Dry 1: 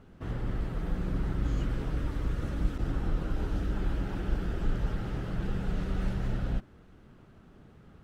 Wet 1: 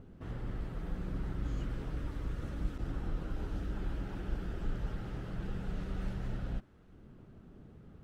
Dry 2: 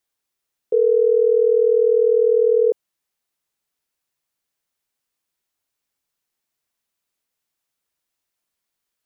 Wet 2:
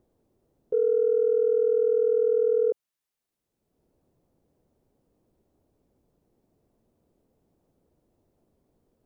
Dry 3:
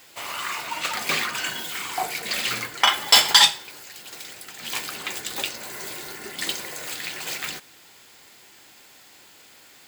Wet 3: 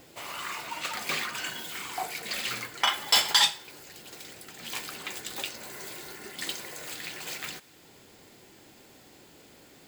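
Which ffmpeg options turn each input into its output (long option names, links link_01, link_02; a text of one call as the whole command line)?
ffmpeg -i in.wav -filter_complex "[0:a]acrossover=split=570[link_01][link_02];[link_01]acompressor=mode=upward:threshold=-38dB:ratio=2.5[link_03];[link_03][link_02]amix=inputs=2:normalize=0,asoftclip=type=tanh:threshold=-2dB,volume=-6.5dB" out.wav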